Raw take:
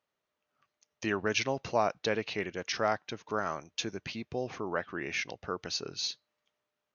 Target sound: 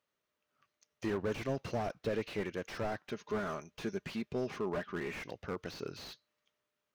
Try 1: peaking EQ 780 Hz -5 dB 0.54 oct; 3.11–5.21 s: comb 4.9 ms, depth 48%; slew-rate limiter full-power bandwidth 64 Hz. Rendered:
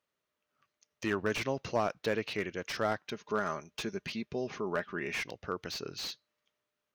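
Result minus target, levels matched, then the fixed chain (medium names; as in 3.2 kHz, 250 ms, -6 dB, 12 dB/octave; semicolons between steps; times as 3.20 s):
slew-rate limiter: distortion -9 dB
peaking EQ 780 Hz -5 dB 0.54 oct; 3.11–5.21 s: comb 4.9 ms, depth 48%; slew-rate limiter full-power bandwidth 16.5 Hz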